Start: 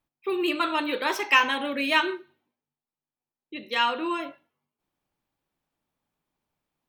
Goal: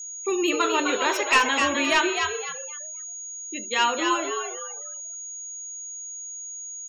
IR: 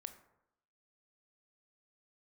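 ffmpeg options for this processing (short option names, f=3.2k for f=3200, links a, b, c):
-filter_complex "[0:a]volume=15.5dB,asoftclip=hard,volume=-15.5dB,asplit=5[a][b][c][d][e];[b]adelay=256,afreqshift=81,volume=-5dB[f];[c]adelay=512,afreqshift=162,volume=-14.6dB[g];[d]adelay=768,afreqshift=243,volume=-24.3dB[h];[e]adelay=1024,afreqshift=324,volume=-33.9dB[i];[a][f][g][h][i]amix=inputs=5:normalize=0,aeval=exprs='val(0)+0.0158*sin(2*PI*6700*n/s)':c=same,afftfilt=real='re*gte(hypot(re,im),0.00891)':imag='im*gte(hypot(re,im),0.00891)':win_size=1024:overlap=0.75,volume=2dB"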